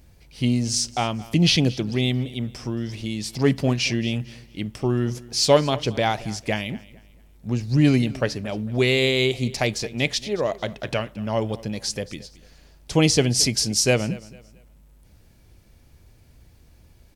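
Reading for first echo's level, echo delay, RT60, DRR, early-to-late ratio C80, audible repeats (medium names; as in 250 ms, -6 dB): -20.0 dB, 224 ms, no reverb, no reverb, no reverb, 2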